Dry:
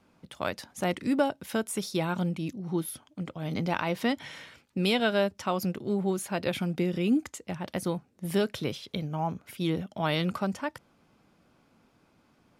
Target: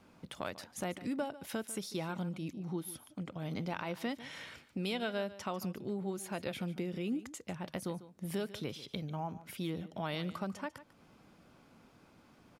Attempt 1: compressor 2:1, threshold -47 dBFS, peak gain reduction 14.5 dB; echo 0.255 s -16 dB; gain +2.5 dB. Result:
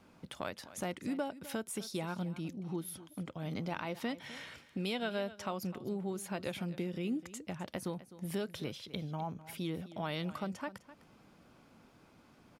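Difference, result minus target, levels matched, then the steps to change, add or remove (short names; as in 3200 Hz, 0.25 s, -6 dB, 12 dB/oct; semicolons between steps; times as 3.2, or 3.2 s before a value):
echo 0.109 s late
change: echo 0.146 s -16 dB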